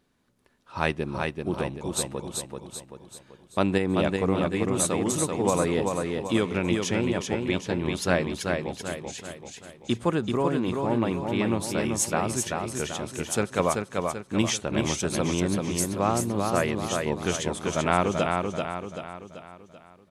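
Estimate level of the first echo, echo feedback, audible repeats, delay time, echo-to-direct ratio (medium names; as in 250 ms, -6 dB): -4.0 dB, 47%, 5, 386 ms, -3.0 dB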